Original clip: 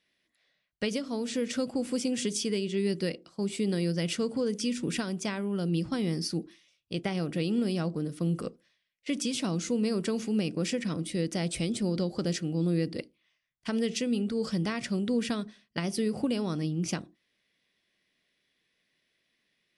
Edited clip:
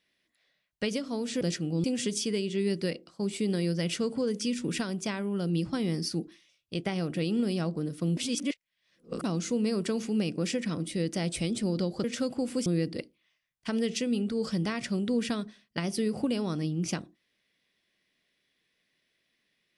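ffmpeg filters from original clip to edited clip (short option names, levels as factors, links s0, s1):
-filter_complex "[0:a]asplit=7[s0][s1][s2][s3][s4][s5][s6];[s0]atrim=end=1.412[s7];[s1]atrim=start=12.228:end=12.662[s8];[s2]atrim=start=2.028:end=8.362[s9];[s3]atrim=start=8.358:end=9.432,asetpts=PTS-STARTPTS,areverse[s10];[s4]atrim=start=9.428:end=12.232[s11];[s5]atrim=start=1.408:end=2.032[s12];[s6]atrim=start=12.658[s13];[s7][s8]acrossfade=d=0.004:c1=hsin:c2=hsin[s14];[s14][s9]acrossfade=d=0.004:c1=hsin:c2=hsin[s15];[s15][s10]acrossfade=d=0.004:c1=hsin:c2=hsin[s16];[s16][s11]acrossfade=d=0.004:c1=hsin:c2=hsin[s17];[s17][s12]acrossfade=d=0.004:c1=hsin:c2=hsin[s18];[s18][s13]acrossfade=d=0.004:c1=hsin:c2=hsin"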